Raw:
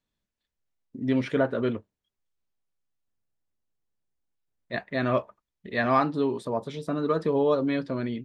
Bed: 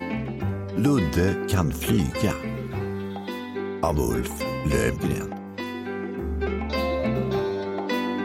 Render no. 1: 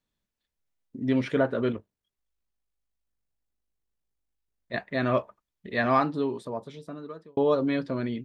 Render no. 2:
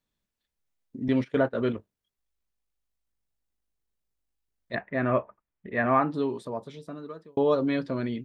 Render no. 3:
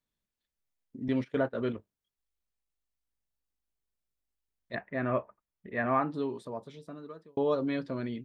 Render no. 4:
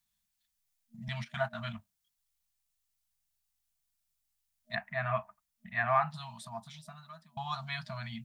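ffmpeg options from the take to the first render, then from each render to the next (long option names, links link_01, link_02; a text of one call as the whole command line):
ffmpeg -i in.wav -filter_complex "[0:a]asettb=1/sr,asplit=3[link_01][link_02][link_03];[link_01]atrim=end=1.724[link_04];[link_02]atrim=start=1.72:end=4.74,asetpts=PTS-STARTPTS,afade=type=in:duration=0.004:curve=qsin,afade=type=out:start_time=3.016:duration=0.004:curve=qsin,tremolo=f=51:d=0.462[link_05];[link_03]atrim=start=4.736[link_06];[link_04][link_05]acrossfade=duration=0.004:curve1=hsin:curve2=qsin[link_07];[link_07][link_06]acrossfade=duration=0.004:curve1=qsin:curve2=hsin,asplit=2[link_08][link_09];[link_08]atrim=end=7.37,asetpts=PTS-STARTPTS,afade=type=out:start_time=5.9:duration=1.47[link_10];[link_09]atrim=start=7.37,asetpts=PTS-STARTPTS,afade=type=in:duration=0.004:curve=hsin[link_11];[link_10][link_11]concat=n=2:v=0:a=1" out.wav
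ffmpeg -i in.wav -filter_complex "[0:a]asettb=1/sr,asplit=3[link_01][link_02][link_03];[link_01]atrim=end=1.084[link_04];[link_02]atrim=start=1.08:end=1.61,asetpts=PTS-STARTPTS,afade=type=in:duration=0.004:curve=qsin,afade=type=out:start_time=0.526:duration=0.004:curve=qsin,agate=range=-19dB:threshold=-30dB:ratio=16:release=100:detection=peak[link_05];[link_03]atrim=start=1.606[link_06];[link_04][link_05]acrossfade=duration=0.004:curve1=hsin:curve2=qsin[link_07];[link_07][link_06]acrossfade=duration=0.004:curve1=qsin:curve2=hsin,asettb=1/sr,asplit=3[link_08][link_09][link_10];[link_08]atrim=end=4.754[link_11];[link_09]atrim=start=4.75:end=6.11,asetpts=PTS-STARTPTS,afade=type=in:duration=0.004:curve=qsin,afade=type=out:start_time=1.356:duration=0.004:curve=qsin,lowpass=frequency=2400:width=0.5412,lowpass=frequency=2400:width=1.3066[link_12];[link_10]atrim=start=6.106[link_13];[link_11][link_12]acrossfade=duration=0.004:curve1=hsin:curve2=qsin[link_14];[link_14][link_13]acrossfade=duration=0.004:curve1=qsin:curve2=hsin" out.wav
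ffmpeg -i in.wav -af "volume=-5dB" out.wav
ffmpeg -i in.wav -af "highshelf=frequency=3100:gain=11.5,afftfilt=real='re*(1-between(b*sr/4096,230,620))':imag='im*(1-between(b*sr/4096,230,620))':win_size=4096:overlap=0.75" out.wav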